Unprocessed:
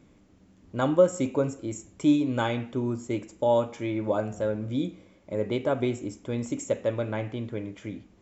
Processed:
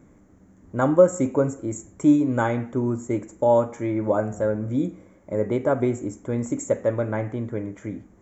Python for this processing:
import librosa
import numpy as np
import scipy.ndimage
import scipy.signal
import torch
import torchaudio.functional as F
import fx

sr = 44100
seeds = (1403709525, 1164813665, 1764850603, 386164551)

y = fx.band_shelf(x, sr, hz=3600.0, db=-14.5, octaves=1.3)
y = F.gain(torch.from_numpy(y), 4.5).numpy()